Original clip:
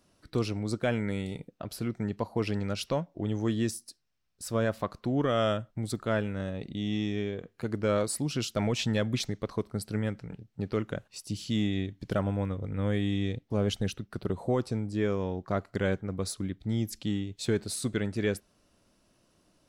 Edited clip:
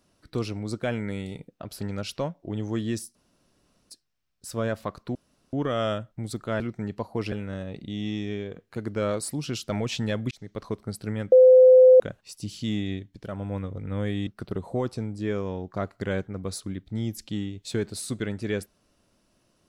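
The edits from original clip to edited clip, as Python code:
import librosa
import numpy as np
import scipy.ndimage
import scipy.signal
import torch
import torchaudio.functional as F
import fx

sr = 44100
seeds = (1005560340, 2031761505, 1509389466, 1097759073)

y = fx.edit(x, sr, fx.move(start_s=1.81, length_s=0.72, to_s=6.19),
    fx.insert_room_tone(at_s=3.87, length_s=0.75),
    fx.insert_room_tone(at_s=5.12, length_s=0.38),
    fx.fade_in_span(start_s=9.18, length_s=0.31),
    fx.bleep(start_s=10.19, length_s=0.68, hz=512.0, db=-9.5),
    fx.fade_down_up(start_s=11.8, length_s=0.65, db=-8.5, fade_s=0.32),
    fx.cut(start_s=13.14, length_s=0.87), tone=tone)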